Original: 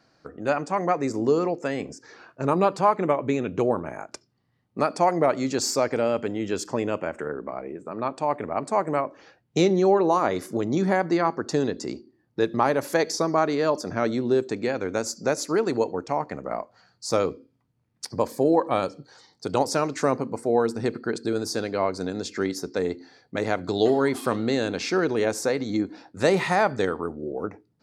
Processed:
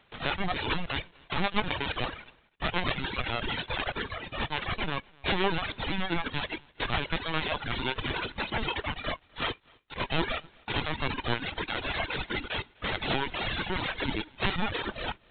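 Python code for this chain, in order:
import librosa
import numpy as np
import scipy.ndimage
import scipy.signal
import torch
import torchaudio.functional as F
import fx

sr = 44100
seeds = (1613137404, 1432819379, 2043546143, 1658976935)

p1 = fx.envelope_flatten(x, sr, power=0.1)
p2 = fx.stretch_vocoder_free(p1, sr, factor=0.55)
p3 = fx.over_compress(p2, sr, threshold_db=-32.0, ratio=-0.5)
p4 = p2 + (p3 * 10.0 ** (-1.0 / 20.0))
p5 = fx.lpc_vocoder(p4, sr, seeds[0], excitation='pitch_kept', order=16)
p6 = p5 + fx.echo_single(p5, sr, ms=254, db=-17.0, dry=0)
y = fx.dereverb_blind(p6, sr, rt60_s=1.7)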